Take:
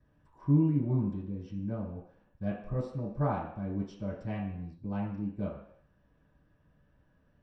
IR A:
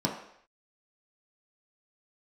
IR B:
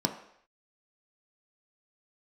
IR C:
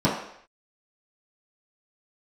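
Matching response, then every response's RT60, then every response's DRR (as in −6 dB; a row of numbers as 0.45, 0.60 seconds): C; non-exponential decay, non-exponential decay, non-exponential decay; −2.5, 3.5, −10.0 decibels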